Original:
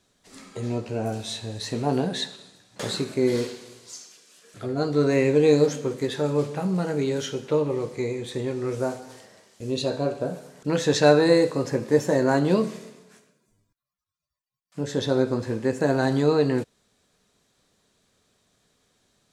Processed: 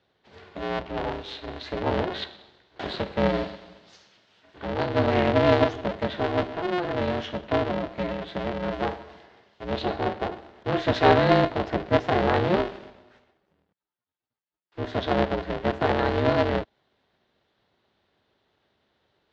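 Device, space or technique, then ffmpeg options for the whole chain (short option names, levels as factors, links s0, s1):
ring modulator pedal into a guitar cabinet: -af "aeval=exprs='val(0)*sgn(sin(2*PI*180*n/s))':c=same,highpass=82,equalizer=f=280:t=q:w=4:g=-5,equalizer=f=1200:t=q:w=4:g=-3,equalizer=f=2400:t=q:w=4:g=-4,lowpass=f=3600:w=0.5412,lowpass=f=3600:w=1.3066"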